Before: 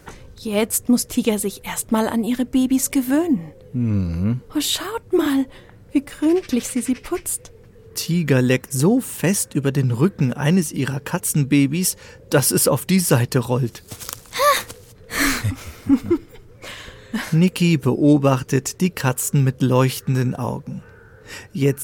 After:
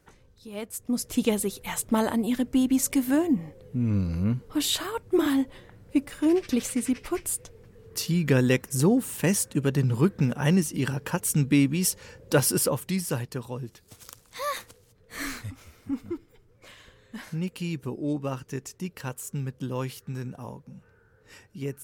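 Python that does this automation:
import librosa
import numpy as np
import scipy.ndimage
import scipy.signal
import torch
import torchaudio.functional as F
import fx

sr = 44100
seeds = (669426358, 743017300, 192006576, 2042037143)

y = fx.gain(x, sr, db=fx.line((0.72, -16.5), (1.17, -5.0), (12.35, -5.0), (13.31, -15.0)))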